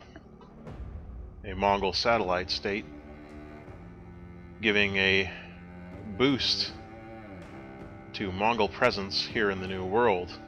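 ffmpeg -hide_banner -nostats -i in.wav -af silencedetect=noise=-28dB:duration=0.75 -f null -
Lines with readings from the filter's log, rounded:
silence_start: 0.00
silence_end: 1.48 | silence_duration: 1.48
silence_start: 2.80
silence_end: 4.63 | silence_duration: 1.83
silence_start: 5.28
silence_end: 6.19 | silence_duration: 0.92
silence_start: 6.67
silence_end: 8.15 | silence_duration: 1.48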